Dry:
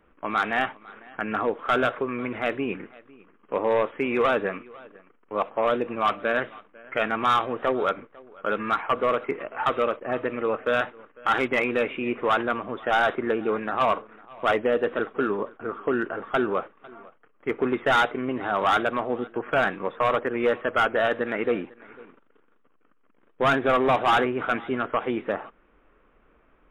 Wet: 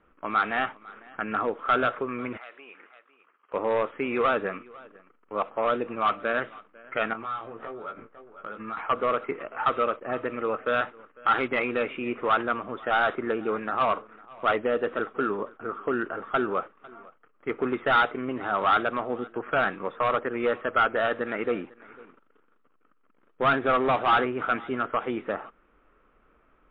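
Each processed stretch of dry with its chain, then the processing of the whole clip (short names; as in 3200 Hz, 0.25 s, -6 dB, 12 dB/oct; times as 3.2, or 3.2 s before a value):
2.37–3.54 HPF 770 Hz + compressor 2.5:1, threshold -44 dBFS
7.13–8.77 air absorption 220 m + compressor 4:1, threshold -35 dBFS + doubler 18 ms -4 dB
whole clip: steep low-pass 4300 Hz 48 dB/oct; bell 1300 Hz +6.5 dB 0.22 oct; gain -3 dB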